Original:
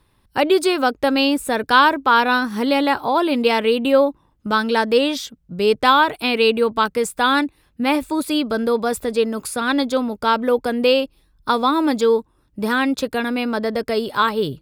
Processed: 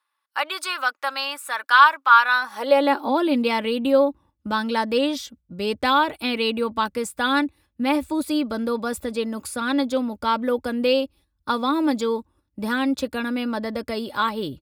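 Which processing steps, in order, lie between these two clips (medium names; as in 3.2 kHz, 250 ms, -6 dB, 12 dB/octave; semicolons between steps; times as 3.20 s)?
gate -45 dBFS, range -9 dB; comb 3.5 ms, depth 43%; high-pass sweep 1.2 kHz -> 71 Hz, 2.30–3.69 s; trim -5.5 dB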